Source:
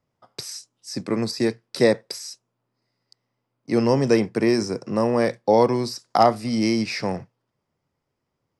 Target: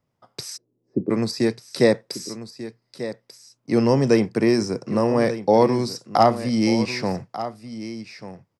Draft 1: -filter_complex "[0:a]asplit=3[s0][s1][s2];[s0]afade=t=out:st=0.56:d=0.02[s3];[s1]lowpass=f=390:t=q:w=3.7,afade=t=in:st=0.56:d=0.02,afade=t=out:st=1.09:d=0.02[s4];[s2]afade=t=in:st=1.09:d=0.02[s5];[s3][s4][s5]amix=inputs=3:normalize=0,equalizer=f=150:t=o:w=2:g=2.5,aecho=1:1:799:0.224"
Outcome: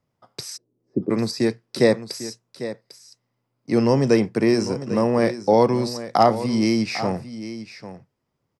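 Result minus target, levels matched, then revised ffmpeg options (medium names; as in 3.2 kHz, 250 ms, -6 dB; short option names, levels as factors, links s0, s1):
echo 392 ms early
-filter_complex "[0:a]asplit=3[s0][s1][s2];[s0]afade=t=out:st=0.56:d=0.02[s3];[s1]lowpass=f=390:t=q:w=3.7,afade=t=in:st=0.56:d=0.02,afade=t=out:st=1.09:d=0.02[s4];[s2]afade=t=in:st=1.09:d=0.02[s5];[s3][s4][s5]amix=inputs=3:normalize=0,equalizer=f=150:t=o:w=2:g=2.5,aecho=1:1:1191:0.224"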